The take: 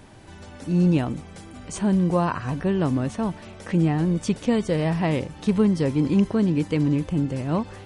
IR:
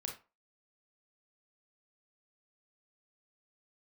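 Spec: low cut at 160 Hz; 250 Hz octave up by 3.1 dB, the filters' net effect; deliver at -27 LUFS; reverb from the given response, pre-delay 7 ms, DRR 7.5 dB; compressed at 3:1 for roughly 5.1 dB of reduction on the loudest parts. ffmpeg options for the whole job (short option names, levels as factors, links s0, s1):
-filter_complex "[0:a]highpass=160,equalizer=f=250:t=o:g=6,acompressor=threshold=0.112:ratio=3,asplit=2[s0][s1];[1:a]atrim=start_sample=2205,adelay=7[s2];[s1][s2]afir=irnorm=-1:irlink=0,volume=0.501[s3];[s0][s3]amix=inputs=2:normalize=0,volume=0.668"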